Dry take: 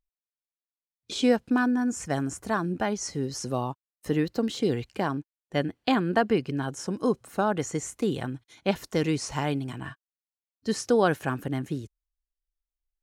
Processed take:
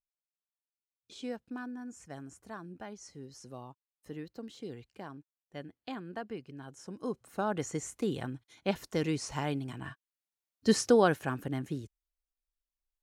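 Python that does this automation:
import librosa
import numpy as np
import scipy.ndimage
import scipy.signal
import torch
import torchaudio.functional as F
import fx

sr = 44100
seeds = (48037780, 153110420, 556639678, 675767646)

y = fx.gain(x, sr, db=fx.line((6.56, -17.0), (7.58, -5.5), (9.77, -5.5), (10.69, 3.0), (11.21, -5.0)))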